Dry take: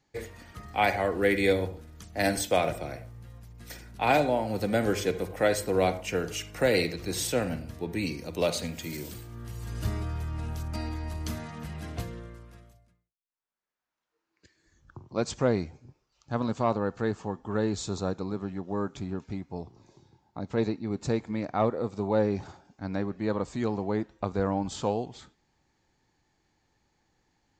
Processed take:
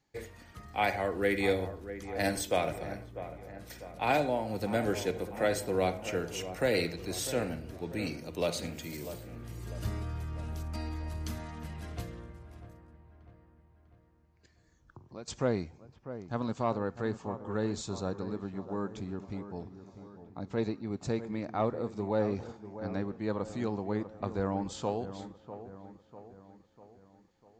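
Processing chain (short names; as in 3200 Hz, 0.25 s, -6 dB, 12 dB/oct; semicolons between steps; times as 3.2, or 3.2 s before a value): 12.24–15.28 compressor 2.5:1, threshold -43 dBFS, peak gain reduction 13.5 dB; on a send: dark delay 0.647 s, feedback 51%, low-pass 1700 Hz, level -12 dB; on the sum: gain -4.5 dB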